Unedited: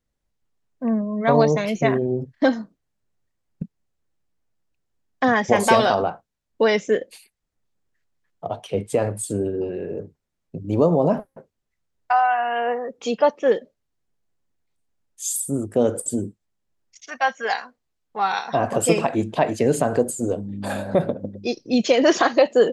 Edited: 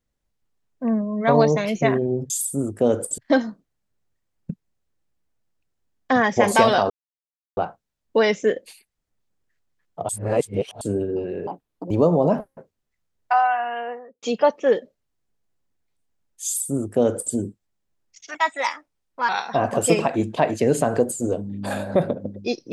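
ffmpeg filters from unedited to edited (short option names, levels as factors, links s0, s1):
-filter_complex "[0:a]asplit=11[s0][s1][s2][s3][s4][s5][s6][s7][s8][s9][s10];[s0]atrim=end=2.302[s11];[s1]atrim=start=15.248:end=16.132[s12];[s2]atrim=start=2.298:end=6.02,asetpts=PTS-STARTPTS,afade=t=out:st=3.718:d=0.004:c=hsin,apad=pad_dur=0.67[s13];[s3]atrim=start=6.02:end=8.542,asetpts=PTS-STARTPTS,afade=t=in:d=0.004:c=hsin[s14];[s4]atrim=start=8.538:end=9.262,asetpts=PTS-STARTPTS,areverse[s15];[s5]atrim=start=9.258:end=9.924[s16];[s6]atrim=start=9.92:end=10.7,asetpts=PTS-STARTPTS,asetrate=78939,aresample=44100[s17];[s7]atrim=start=10.696:end=13.02,asetpts=PTS-STARTPTS,afade=t=out:st=1.494:d=0.83[s18];[s8]atrim=start=13.02:end=17.144,asetpts=PTS-STARTPTS,afade=t=in:d=0.004:c=hsin[s19];[s9]atrim=start=17.14:end=18.28,asetpts=PTS-STARTPTS,asetrate=53361,aresample=44100[s20];[s10]atrim=start=18.276[s21];[s11][s12]acrossfade=d=0.004:c1=hsin:c2=hsin[s22];[s13][s14]concat=n=2:v=0:a=1[s23];[s22][s23]acrossfade=d=0.004:c1=hsin:c2=hsin[s24];[s24][s15]acrossfade=d=0.004:c1=hsin:c2=hsin[s25];[s25][s16]acrossfade=d=0.004:c1=hsin:c2=hsin[s26];[s26][s17]acrossfade=d=0.004:c1=hsin:c2=hsin[s27];[s18][s19]concat=n=2:v=0:a=1[s28];[s27][s28]acrossfade=d=0.004:c1=hsin:c2=hsin[s29];[s29][s20]acrossfade=d=0.004:c1=hsin:c2=hsin[s30];[s30][s21]acrossfade=d=0.004:c1=hsin:c2=hsin"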